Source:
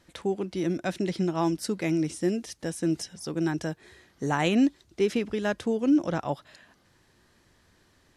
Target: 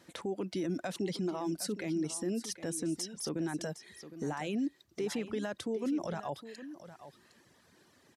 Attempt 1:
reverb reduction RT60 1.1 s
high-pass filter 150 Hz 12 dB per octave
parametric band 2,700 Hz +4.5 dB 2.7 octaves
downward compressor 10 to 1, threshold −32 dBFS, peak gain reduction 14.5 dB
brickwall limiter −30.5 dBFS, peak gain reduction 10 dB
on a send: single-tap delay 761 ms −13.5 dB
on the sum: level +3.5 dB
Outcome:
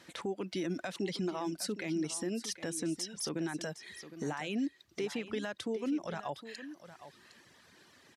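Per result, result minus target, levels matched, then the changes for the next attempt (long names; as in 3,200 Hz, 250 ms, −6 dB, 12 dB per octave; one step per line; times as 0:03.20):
downward compressor: peak gain reduction +14.5 dB; 2,000 Hz band +3.5 dB
remove: downward compressor 10 to 1, threshold −32 dBFS, peak gain reduction 14.5 dB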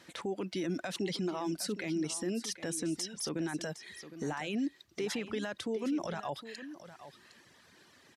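2,000 Hz band +3.5 dB
change: parametric band 2,700 Hz −2.5 dB 2.7 octaves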